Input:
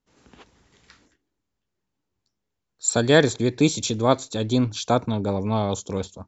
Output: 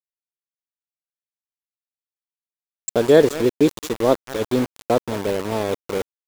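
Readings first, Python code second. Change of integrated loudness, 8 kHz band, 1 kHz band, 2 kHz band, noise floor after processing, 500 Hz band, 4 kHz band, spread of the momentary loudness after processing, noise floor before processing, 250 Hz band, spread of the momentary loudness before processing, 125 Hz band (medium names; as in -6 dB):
+2.0 dB, no reading, -0.5 dB, -2.5 dB, under -85 dBFS, +5.0 dB, -4.5 dB, 10 LU, -80 dBFS, +1.0 dB, 8 LU, -5.5 dB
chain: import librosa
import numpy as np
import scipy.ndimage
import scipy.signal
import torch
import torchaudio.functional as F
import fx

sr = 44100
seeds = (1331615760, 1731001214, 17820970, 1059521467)

p1 = fx.peak_eq(x, sr, hz=430.0, db=13.5, octaves=1.6)
p2 = p1 + fx.echo_feedback(p1, sr, ms=209, feedback_pct=18, wet_db=-16.0, dry=0)
p3 = np.where(np.abs(p2) >= 10.0 ** (-16.5 / 20.0), p2, 0.0)
y = p3 * 10.0 ** (-7.0 / 20.0)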